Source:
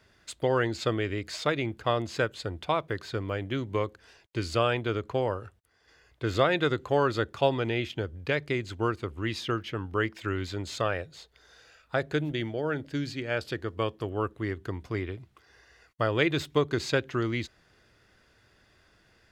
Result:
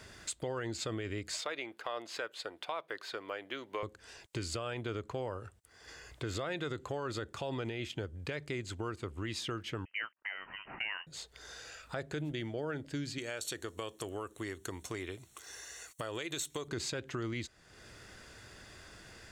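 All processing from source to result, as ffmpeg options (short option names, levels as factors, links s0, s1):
-filter_complex "[0:a]asettb=1/sr,asplit=3[s0][s1][s2];[s0]atrim=end=1.414[s3];[s1]atrim=start=1.41:end=3.83,asetpts=PTS-STARTPTS,afade=t=in:d=0.004:c=qsin,afade=t=out:st=2.416:d=0.004:c=qsin,highpass=540,equalizer=f=7600:w=1.4:g=-10.5[s4];[s2]atrim=start=3.826[s5];[s3][s4]acrossfade=d=0.004:c1=hsin:c2=qsin[s6];[s6][s5]acrossfade=d=0.004:c1=qsin:c2=hsin,asettb=1/sr,asplit=3[s7][s8][s9];[s7]atrim=end=9.854[s10];[s8]atrim=start=9.85:end=11.07,asetpts=PTS-STARTPTS,afade=t=in:d=0.004:c=qsin,afade=t=out:st=1.216:d=0.004:c=qsin,agate=range=0.00631:threshold=0.00794:ratio=16:release=100:detection=peak,highpass=f=630:w=0.5412,highpass=f=630:w=1.3066,lowpass=f=2900:t=q:w=0.5098,lowpass=f=2900:t=q:w=0.6013,lowpass=f=2900:t=q:w=0.9,lowpass=f=2900:t=q:w=2.563,afreqshift=-3400[s11];[s9]atrim=start=11.066[s12];[s10][s11]acrossfade=d=0.004:c1=hsin:c2=qsin[s13];[s13][s12]acrossfade=d=0.004:c1=qsin:c2=hsin,asettb=1/sr,asplit=3[s14][s15][s16];[s14]atrim=end=13.184[s17];[s15]atrim=start=13.18:end=16.68,asetpts=PTS-STARTPTS,afade=t=in:d=0.004:c=qsin,afade=t=out:st=3.496:d=0.004:c=qsin,bass=f=250:g=-8,treble=f=4000:g=14,acompressor=threshold=0.0316:ratio=4:attack=3.2:release=140:knee=1:detection=peak,asuperstop=centerf=4900:order=8:qfactor=6.3[s18];[s16]atrim=start=16.676[s19];[s17][s18]acrossfade=d=0.004:c1=hsin:c2=qsin[s20];[s20][s19]acrossfade=d=0.004:c1=qsin:c2=hsin,equalizer=f=8000:w=1.5:g=9.5,alimiter=limit=0.0944:level=0:latency=1:release=35,acompressor=threshold=0.00126:ratio=2,volume=2.99"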